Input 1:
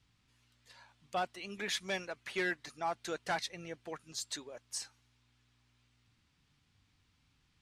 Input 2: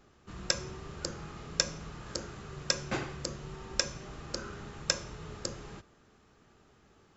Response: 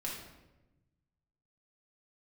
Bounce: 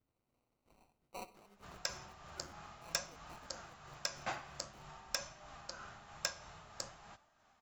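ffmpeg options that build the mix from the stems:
-filter_complex "[0:a]lowshelf=f=130:g=-9.5,tremolo=f=210:d=0.889,acrusher=samples=26:mix=1:aa=0.000001,volume=0.447,afade=t=out:st=0.85:d=0.79:silence=0.237137,asplit=3[s0][s1][s2];[s1]volume=0.188[s3];[s2]volume=0.133[s4];[1:a]lowshelf=f=540:t=q:w=3:g=-8,tremolo=f=3.1:d=0.39,flanger=delay=3.1:depth=8.7:regen=76:speed=0.5:shape=sinusoidal,adelay=1350,volume=0.944[s5];[2:a]atrim=start_sample=2205[s6];[s3][s6]afir=irnorm=-1:irlink=0[s7];[s4]aecho=0:1:63|126|189|252|315|378:1|0.44|0.194|0.0852|0.0375|0.0165[s8];[s0][s5][s7][s8]amix=inputs=4:normalize=0,volume=14.1,asoftclip=hard,volume=0.0708"

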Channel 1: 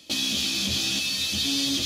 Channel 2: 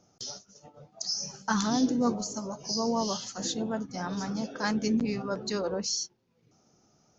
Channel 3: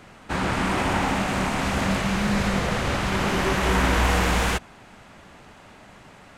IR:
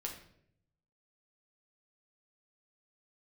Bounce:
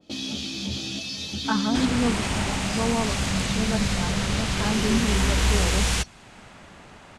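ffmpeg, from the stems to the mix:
-filter_complex "[0:a]lowpass=7400,tiltshelf=f=860:g=6.5,volume=0.596[s0];[1:a]lowpass=2600,aecho=1:1:4.6:0.65,volume=0.891[s1];[2:a]lowpass=f=11000:w=0.5412,lowpass=f=11000:w=1.3066,acrossover=split=180|3000[s2][s3][s4];[s3]acompressor=threshold=0.00398:ratio=1.5[s5];[s2][s5][s4]amix=inputs=3:normalize=0,adelay=1450,volume=1.19[s6];[s0][s1][s6]amix=inputs=3:normalize=0,adynamicequalizer=threshold=0.00631:dfrequency=2200:dqfactor=0.7:tfrequency=2200:tqfactor=0.7:attack=5:release=100:ratio=0.375:range=2:mode=boostabove:tftype=highshelf"

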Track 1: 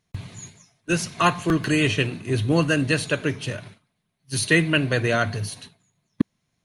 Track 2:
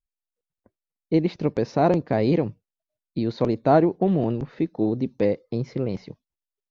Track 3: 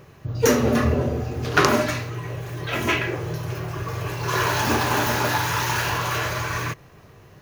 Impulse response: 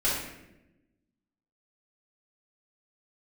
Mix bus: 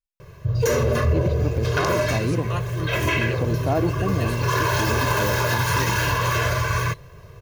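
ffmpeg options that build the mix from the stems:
-filter_complex "[0:a]adelay=1300,volume=0.224[s0];[1:a]volume=0.596[s1];[2:a]lowshelf=f=130:g=7,aecho=1:1:1.9:0.78,adelay=200,volume=0.944[s2];[s0][s1][s2]amix=inputs=3:normalize=0,alimiter=limit=0.266:level=0:latency=1:release=55"

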